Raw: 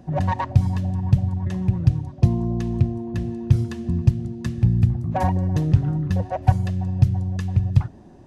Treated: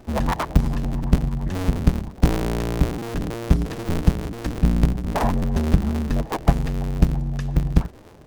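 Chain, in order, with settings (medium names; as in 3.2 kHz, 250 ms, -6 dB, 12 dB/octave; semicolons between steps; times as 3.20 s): cycle switcher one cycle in 2, inverted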